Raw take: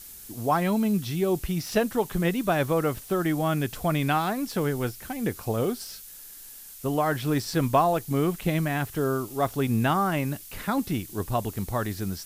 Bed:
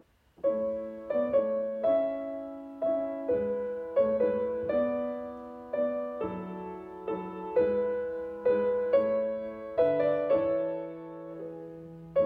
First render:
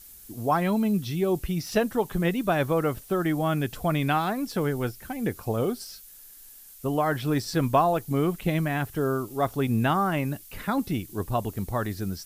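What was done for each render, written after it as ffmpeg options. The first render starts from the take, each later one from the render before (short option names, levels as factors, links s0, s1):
-af "afftdn=nr=6:nf=-45"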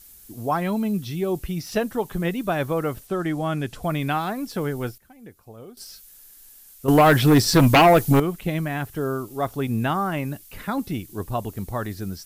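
-filter_complex "[0:a]asettb=1/sr,asplit=3[s0][s1][s2];[s0]atrim=end=3.074[s3];[s1]atrim=start=3.07:end=3.83,asetpts=PTS-STARTPTS,afade=t=in:d=0.004:c=qsin,afade=t=out:st=0.756:d=0.004:c=qsin,lowpass=10000[s4];[s2]atrim=start=3.826[s5];[s3][s4]acrossfade=d=0.004:c1=hsin:c2=qsin[s6];[s6][s5]acrossfade=d=0.004:c1=qsin:c2=hsin,asettb=1/sr,asplit=3[s7][s8][s9];[s7]atrim=end=6.884[s10];[s8]atrim=start=6.88:end=8.2,asetpts=PTS-STARTPTS,afade=t=in:d=0.004:c=qsin,afade=t=out:st=1.316:d=0.004:c=qsin,aeval=exprs='0.335*sin(PI/2*2.82*val(0)/0.335)':c=same[s11];[s9]atrim=start=8.196[s12];[s10][s11]acrossfade=d=0.004:c1=hsin:c2=qsin[s13];[s13][s12]acrossfade=d=0.004:c1=qsin:c2=hsin,asplit=3[s14][s15][s16];[s14]atrim=end=4.98,asetpts=PTS-STARTPTS,afade=t=out:st=4.86:d=0.12:c=log:silence=0.158489[s17];[s15]atrim=start=4.98:end=5.77,asetpts=PTS-STARTPTS,volume=0.158[s18];[s16]atrim=start=5.77,asetpts=PTS-STARTPTS,afade=t=in:d=0.12:c=log:silence=0.158489[s19];[s17][s18][s19]concat=n=3:v=0:a=1"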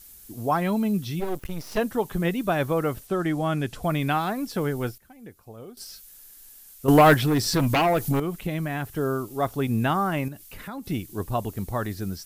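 -filter_complex "[0:a]asplit=3[s0][s1][s2];[s0]afade=t=out:st=1.19:d=0.02[s3];[s1]aeval=exprs='max(val(0),0)':c=same,afade=t=in:st=1.19:d=0.02,afade=t=out:st=1.77:d=0.02[s4];[s2]afade=t=in:st=1.77:d=0.02[s5];[s3][s4][s5]amix=inputs=3:normalize=0,asettb=1/sr,asplit=3[s6][s7][s8];[s6]atrim=end=7.144[s9];[s7]atrim=start=7.14:end=8.96,asetpts=PTS-STARTPTS,afade=t=in:d=0.004:c=qsin,afade=t=out:st=1.816:d=0.004:c=qsin,acompressor=threshold=0.0562:ratio=2:attack=3.2:release=140:knee=1:detection=peak[s10];[s8]atrim=start=8.956[s11];[s9][s10]acrossfade=d=0.004:c1=hsin:c2=qsin[s12];[s12][s11]acrossfade=d=0.004:c1=qsin:c2=hsin,asettb=1/sr,asplit=3[s13][s14][s15];[s13]atrim=end=10.284[s16];[s14]atrim=start=10.28:end=10.86,asetpts=PTS-STARTPTS,afade=t=in:d=0.004:c=qsin,afade=t=out:st=0.576:d=0.004:c=qsin,acompressor=threshold=0.0141:ratio=2.5:attack=3.2:release=140:knee=1:detection=peak[s17];[s15]atrim=start=10.856[s18];[s16][s17]acrossfade=d=0.004:c1=hsin:c2=qsin[s19];[s19][s18]acrossfade=d=0.004:c1=qsin:c2=hsin"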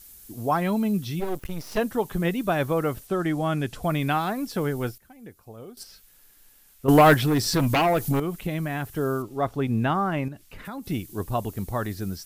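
-filter_complex "[0:a]asettb=1/sr,asplit=3[s0][s1][s2];[s0]atrim=end=5.834[s3];[s1]atrim=start=5.83:end=6.89,asetpts=PTS-STARTPTS,afade=t=in:d=0.004:c=qsin,afade=t=out:st=1.056:d=0.004:c=qsin,bass=f=250:g=0,treble=f=4000:g=-9[s4];[s2]atrim=start=6.886[s5];[s3][s4]acrossfade=d=0.004:c1=hsin:c2=qsin[s6];[s6][s5]acrossfade=d=0.004:c1=qsin:c2=hsin,asettb=1/sr,asplit=3[s7][s8][s9];[s7]atrim=end=9.224[s10];[s8]atrim=start=9.22:end=10.65,asetpts=PTS-STARTPTS,afade=t=in:d=0.004:c=qsin,afade=t=out:st=1.426:d=0.004:c=qsin,aemphasis=mode=reproduction:type=50kf[s11];[s9]atrim=start=10.646[s12];[s10][s11]acrossfade=d=0.004:c1=hsin:c2=qsin[s13];[s13][s12]acrossfade=d=0.004:c1=qsin:c2=hsin"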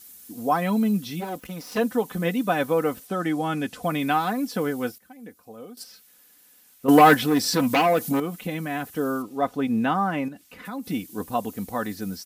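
-af "highpass=140,aecho=1:1:4:0.61"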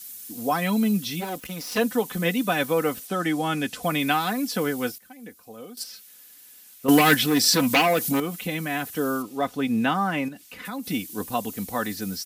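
-filter_complex "[0:a]acrossover=split=330|1900[s0][s1][s2];[s1]alimiter=limit=0.168:level=0:latency=1:release=374[s3];[s2]acontrast=70[s4];[s0][s3][s4]amix=inputs=3:normalize=0"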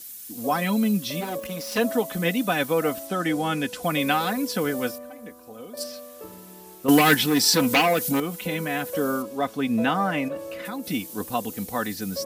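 -filter_complex "[1:a]volume=0.398[s0];[0:a][s0]amix=inputs=2:normalize=0"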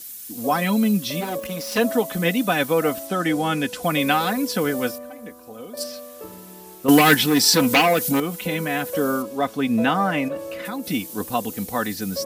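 -af "volume=1.41"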